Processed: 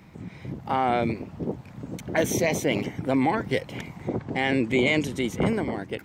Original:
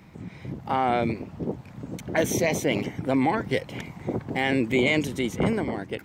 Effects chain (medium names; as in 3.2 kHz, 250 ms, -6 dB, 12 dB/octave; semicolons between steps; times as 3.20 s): 4.08–5.20 s: low-pass 7 kHz -> 12 kHz 12 dB/octave